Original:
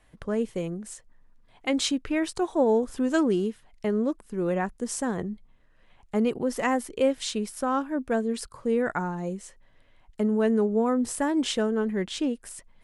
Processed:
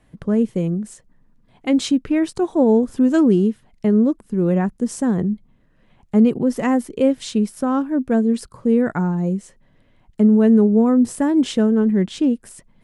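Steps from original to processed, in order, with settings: peaking EQ 180 Hz +13 dB 2.3 oct

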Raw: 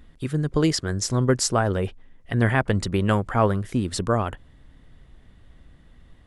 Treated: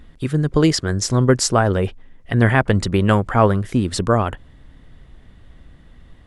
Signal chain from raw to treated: treble shelf 8.3 kHz -4.5 dB; trim +5.5 dB

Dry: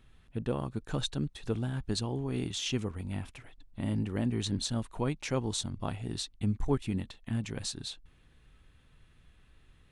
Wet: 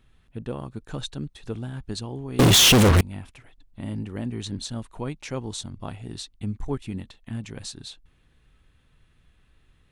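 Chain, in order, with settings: 2.39–3.01 s: fuzz box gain 52 dB, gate -51 dBFS

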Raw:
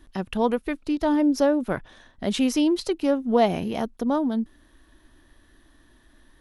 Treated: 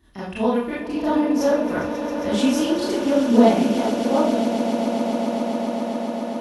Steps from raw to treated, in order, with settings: vibrato 14 Hz 73 cents; high-pass sweep 64 Hz -> 1.6 kHz, 2.30–5.40 s; on a send: echo with a slow build-up 135 ms, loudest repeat 8, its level -13 dB; on the sum: Schroeder reverb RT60 0.46 s, combs from 26 ms, DRR -9 dB; trim -8 dB

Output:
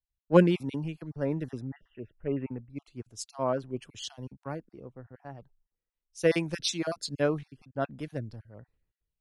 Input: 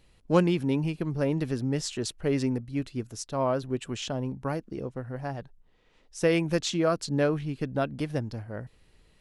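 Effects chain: random holes in the spectrogram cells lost 22%; 1.62–2.70 s: elliptic low-pass 2.7 kHz, stop band 40 dB; three bands expanded up and down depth 100%; trim -5 dB

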